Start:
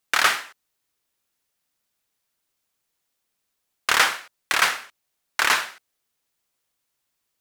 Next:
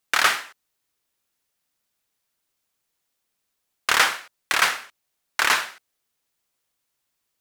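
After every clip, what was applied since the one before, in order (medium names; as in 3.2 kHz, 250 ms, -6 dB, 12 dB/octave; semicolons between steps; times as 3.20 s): no audible change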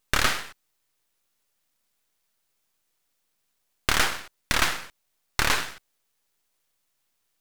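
compression 2:1, threshold -25 dBFS, peak gain reduction 7 dB; half-wave rectifier; trim +6 dB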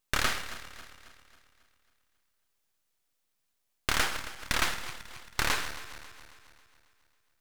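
backward echo that repeats 136 ms, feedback 69%, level -13 dB; trim -5.5 dB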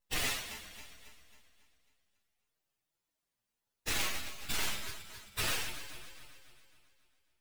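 frequency axis rescaled in octaves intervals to 129%; flange 0.33 Hz, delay 5.7 ms, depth 8.6 ms, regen -41%; hard clipper -35.5 dBFS, distortion -11 dB; trim +7 dB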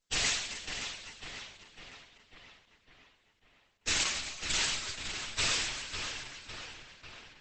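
treble shelf 2.2 kHz +7.5 dB; filtered feedback delay 550 ms, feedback 60%, low-pass 4.8 kHz, level -6.5 dB; Opus 10 kbps 48 kHz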